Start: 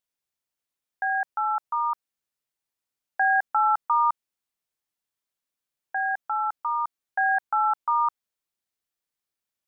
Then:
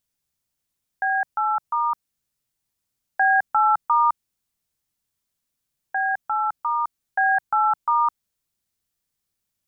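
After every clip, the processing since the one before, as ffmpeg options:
-af "bass=f=250:g=12,treble=f=4k:g=5,volume=3dB"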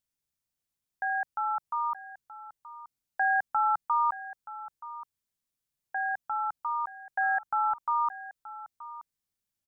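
-af "aecho=1:1:926:0.168,volume=-7.5dB"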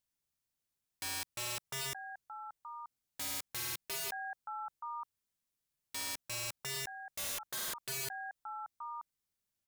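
-af "aeval=exprs='(mod(42.2*val(0)+1,2)-1)/42.2':c=same,volume=-1dB"

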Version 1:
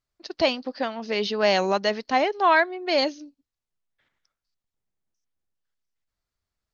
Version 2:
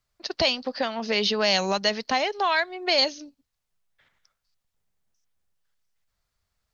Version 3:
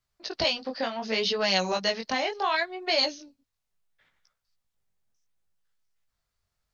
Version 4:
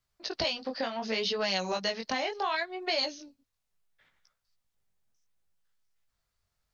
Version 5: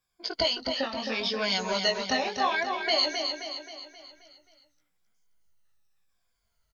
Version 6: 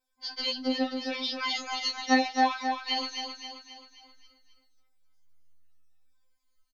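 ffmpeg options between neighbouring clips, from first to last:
-filter_complex "[0:a]equalizer=f=310:w=2:g=-7.5,acrossover=split=150|3000[a][b][c];[b]acompressor=threshold=-31dB:ratio=4[d];[a][d][c]amix=inputs=3:normalize=0,volume=7dB"
-af "flanger=delay=15.5:depth=7.3:speed=0.69"
-af "acompressor=threshold=-30dB:ratio=2"
-filter_complex "[0:a]afftfilt=real='re*pow(10,14/40*sin(2*PI*(1.8*log(max(b,1)*sr/1024/100)/log(2)-(-0.82)*(pts-256)/sr)))':imag='im*pow(10,14/40*sin(2*PI*(1.8*log(max(b,1)*sr/1024/100)/log(2)-(-0.82)*(pts-256)/sr)))':win_size=1024:overlap=0.75,asplit=2[a][b];[b]aecho=0:1:265|530|795|1060|1325|1590:0.501|0.246|0.12|0.059|0.0289|0.0142[c];[a][c]amix=inputs=2:normalize=0"
-filter_complex "[0:a]asplit=2[a][b];[b]adelay=23,volume=-13.5dB[c];[a][c]amix=inputs=2:normalize=0,afftfilt=real='re*3.46*eq(mod(b,12),0)':imag='im*3.46*eq(mod(b,12),0)':win_size=2048:overlap=0.75"

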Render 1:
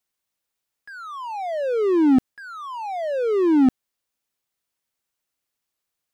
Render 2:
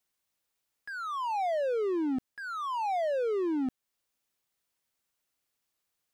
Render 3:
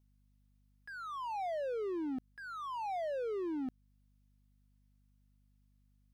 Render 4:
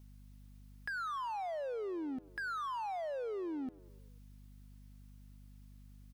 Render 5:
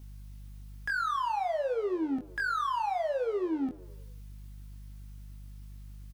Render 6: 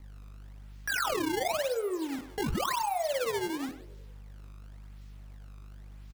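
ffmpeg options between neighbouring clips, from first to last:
-filter_complex "[0:a]asplit=2[a][b];[b]acompressor=threshold=-28dB:ratio=6,volume=-0.5dB[c];[a][c]amix=inputs=2:normalize=0,alimiter=limit=-18.5dB:level=0:latency=1:release=23,volume=-6dB"
-af "equalizer=f=7.3k:w=5.4:g=-4,aeval=exprs='val(0)+0.000891*(sin(2*PI*50*n/s)+sin(2*PI*2*50*n/s)/2+sin(2*PI*3*50*n/s)/3+sin(2*PI*4*50*n/s)/4+sin(2*PI*5*50*n/s)/5)':c=same,volume=-7.5dB"
-filter_complex "[0:a]alimiter=level_in=15.5dB:limit=-24dB:level=0:latency=1,volume=-15.5dB,acompressor=threshold=-54dB:ratio=3,asplit=6[a][b][c][d][e][f];[b]adelay=99,afreqshift=43,volume=-21.5dB[g];[c]adelay=198,afreqshift=86,volume=-25.8dB[h];[d]adelay=297,afreqshift=129,volume=-30.1dB[i];[e]adelay=396,afreqshift=172,volume=-34.4dB[j];[f]adelay=495,afreqshift=215,volume=-38.7dB[k];[a][g][h][i][j][k]amix=inputs=6:normalize=0,volume=14dB"
-filter_complex "[0:a]asoftclip=type=hard:threshold=-34dB,asplit=2[a][b];[b]adelay=22,volume=-4.5dB[c];[a][c]amix=inputs=2:normalize=0,volume=7dB"
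-filter_complex "[0:a]acrossover=split=340[a][b];[a]asoftclip=type=tanh:threshold=-39.5dB[c];[c][b]amix=inputs=2:normalize=0,acrusher=samples=20:mix=1:aa=0.000001:lfo=1:lforange=32:lforate=0.94,asplit=2[d][e];[e]adelay=100,highpass=300,lowpass=3.4k,asoftclip=type=hard:threshold=-33.5dB,volume=-10dB[f];[d][f]amix=inputs=2:normalize=0"

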